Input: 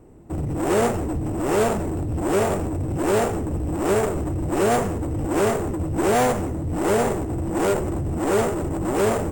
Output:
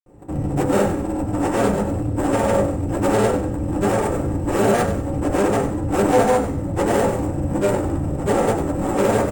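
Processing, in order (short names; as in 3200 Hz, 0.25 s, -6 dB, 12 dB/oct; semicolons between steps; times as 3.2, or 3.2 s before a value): flange 1.9 Hz, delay 9 ms, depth 1.6 ms, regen -67%; grains, pitch spread up and down by 0 st; frequency-shifting echo 96 ms, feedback 34%, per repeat -43 Hz, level -10 dB; on a send at -2.5 dB: reverb RT60 0.30 s, pre-delay 3 ms; on the sum: gain +5.5 dB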